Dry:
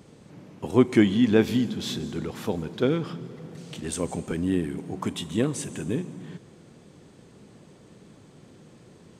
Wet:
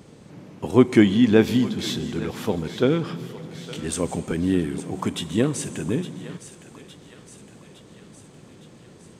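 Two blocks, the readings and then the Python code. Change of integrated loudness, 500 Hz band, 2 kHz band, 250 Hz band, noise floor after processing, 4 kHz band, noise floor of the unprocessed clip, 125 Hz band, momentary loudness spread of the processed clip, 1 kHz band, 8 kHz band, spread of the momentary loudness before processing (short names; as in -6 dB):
+3.5 dB, +3.5 dB, +3.5 dB, +3.5 dB, -48 dBFS, +4.0 dB, -53 dBFS, +3.5 dB, 19 LU, +3.5 dB, +4.0 dB, 19 LU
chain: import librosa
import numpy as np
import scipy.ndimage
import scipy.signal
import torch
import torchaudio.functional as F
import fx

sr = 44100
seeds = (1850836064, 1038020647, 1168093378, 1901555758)

y = fx.echo_thinned(x, sr, ms=862, feedback_pct=61, hz=860.0, wet_db=-13)
y = F.gain(torch.from_numpy(y), 3.5).numpy()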